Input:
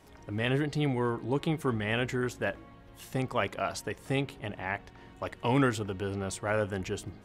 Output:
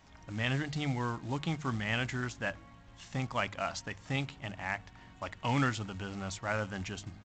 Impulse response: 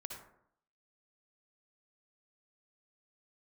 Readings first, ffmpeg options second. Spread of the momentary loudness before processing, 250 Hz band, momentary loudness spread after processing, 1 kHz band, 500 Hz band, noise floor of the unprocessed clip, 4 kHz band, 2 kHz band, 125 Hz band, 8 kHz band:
9 LU, -5.0 dB, 9 LU, -2.0 dB, -8.5 dB, -53 dBFS, -0.5 dB, -1.0 dB, -2.5 dB, -2.5 dB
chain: -af "acontrast=21,equalizer=f=410:t=o:w=0.84:g=-12.5,aresample=16000,acrusher=bits=5:mode=log:mix=0:aa=0.000001,aresample=44100,bandreject=f=50:t=h:w=6,bandreject=f=100:t=h:w=6,bandreject=f=150:t=h:w=6,volume=-5.5dB"

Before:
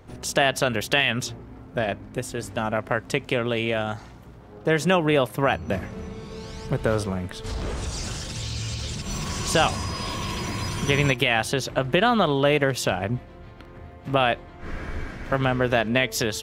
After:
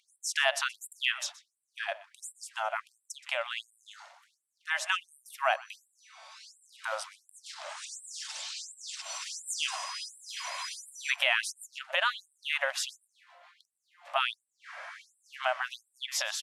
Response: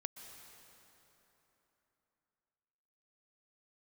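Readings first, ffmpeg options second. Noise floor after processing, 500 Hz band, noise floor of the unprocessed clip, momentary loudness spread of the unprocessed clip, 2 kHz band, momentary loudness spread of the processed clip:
-81 dBFS, -16.0 dB, -44 dBFS, 14 LU, -6.0 dB, 21 LU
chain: -filter_complex "[0:a]lowpass=f=11k:w=0.5412,lowpass=f=11k:w=1.3066,asplit=2[a][b];[b]aecho=0:1:124:0.106[c];[a][c]amix=inputs=2:normalize=0,afftfilt=real='re*gte(b*sr/1024,520*pow(7600/520,0.5+0.5*sin(2*PI*1.4*pts/sr)))':imag='im*gte(b*sr/1024,520*pow(7600/520,0.5+0.5*sin(2*PI*1.4*pts/sr)))':win_size=1024:overlap=0.75,volume=-3.5dB"

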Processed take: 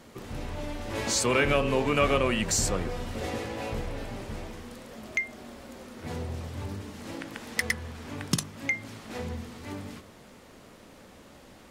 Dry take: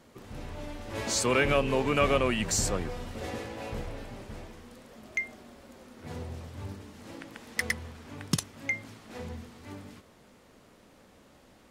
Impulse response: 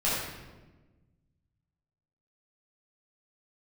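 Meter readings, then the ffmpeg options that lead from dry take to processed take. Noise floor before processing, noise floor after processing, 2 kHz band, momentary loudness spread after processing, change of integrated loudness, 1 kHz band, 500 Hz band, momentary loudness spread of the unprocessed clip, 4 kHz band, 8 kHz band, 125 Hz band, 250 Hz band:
-58 dBFS, -52 dBFS, +2.0 dB, 18 LU, +0.5 dB, +1.5 dB, +1.0 dB, 21 LU, +2.0 dB, +2.0 dB, +2.0 dB, +2.0 dB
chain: -filter_complex "[0:a]bandreject=f=50.74:t=h:w=4,bandreject=f=101.48:t=h:w=4,bandreject=f=152.22:t=h:w=4,bandreject=f=202.96:t=h:w=4,bandreject=f=253.7:t=h:w=4,bandreject=f=304.44:t=h:w=4,bandreject=f=355.18:t=h:w=4,bandreject=f=405.92:t=h:w=4,bandreject=f=456.66:t=h:w=4,bandreject=f=507.4:t=h:w=4,bandreject=f=558.14:t=h:w=4,bandreject=f=608.88:t=h:w=4,bandreject=f=659.62:t=h:w=4,bandreject=f=710.36:t=h:w=4,bandreject=f=761.1:t=h:w=4,bandreject=f=811.84:t=h:w=4,bandreject=f=862.58:t=h:w=4,bandreject=f=913.32:t=h:w=4,bandreject=f=964.06:t=h:w=4,bandreject=f=1.0148k:t=h:w=4,bandreject=f=1.06554k:t=h:w=4,bandreject=f=1.11628k:t=h:w=4,bandreject=f=1.16702k:t=h:w=4,bandreject=f=1.21776k:t=h:w=4,bandreject=f=1.2685k:t=h:w=4,bandreject=f=1.31924k:t=h:w=4,bandreject=f=1.36998k:t=h:w=4,bandreject=f=1.42072k:t=h:w=4,bandreject=f=1.47146k:t=h:w=4,bandreject=f=1.5222k:t=h:w=4,bandreject=f=1.57294k:t=h:w=4,bandreject=f=1.62368k:t=h:w=4,bandreject=f=1.67442k:t=h:w=4,bandreject=f=1.72516k:t=h:w=4,asplit=2[a][b];[b]acompressor=threshold=-40dB:ratio=6,volume=1.5dB[c];[a][c]amix=inputs=2:normalize=0"

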